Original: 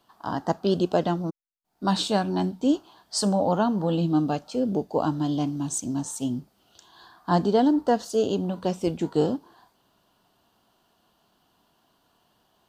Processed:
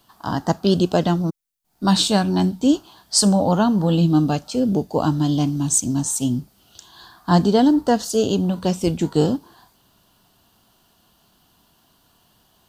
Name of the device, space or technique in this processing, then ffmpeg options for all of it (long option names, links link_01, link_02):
smiley-face EQ: -af "lowshelf=frequency=200:gain=7,equalizer=frequency=510:width_type=o:width=2.5:gain=-4,highshelf=frequency=5300:gain=8,volume=6dB"